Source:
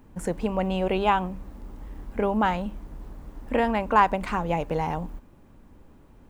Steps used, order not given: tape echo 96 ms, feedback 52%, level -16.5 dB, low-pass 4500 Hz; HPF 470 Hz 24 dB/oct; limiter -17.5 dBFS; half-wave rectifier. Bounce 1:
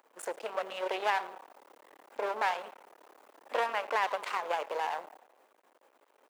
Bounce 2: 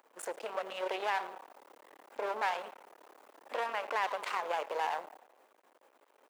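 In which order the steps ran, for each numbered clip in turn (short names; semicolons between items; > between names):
tape echo > half-wave rectifier > HPF > limiter; tape echo > limiter > half-wave rectifier > HPF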